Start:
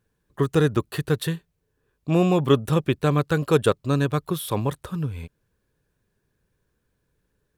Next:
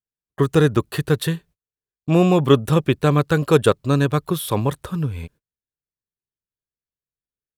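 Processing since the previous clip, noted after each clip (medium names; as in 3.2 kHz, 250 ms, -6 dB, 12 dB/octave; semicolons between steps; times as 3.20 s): gate -49 dBFS, range -33 dB; trim +4 dB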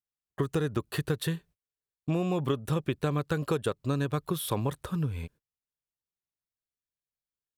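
compression 10:1, threshold -19 dBFS, peak gain reduction 12 dB; trim -5.5 dB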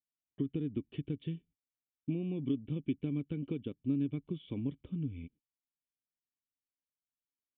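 cascade formant filter i; trim +2.5 dB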